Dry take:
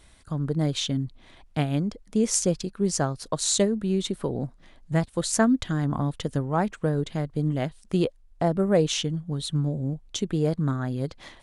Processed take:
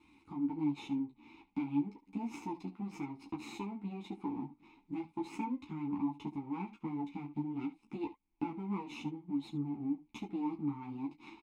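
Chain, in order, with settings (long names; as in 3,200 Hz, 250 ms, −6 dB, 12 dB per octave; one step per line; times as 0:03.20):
lower of the sound and its delayed copy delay 0.76 ms
downward compressor 5 to 1, threshold −36 dBFS, peak gain reduction 17.5 dB
formant filter u
ambience of single reflections 21 ms −9.5 dB, 70 ms −16 dB
string-ensemble chorus
level +14 dB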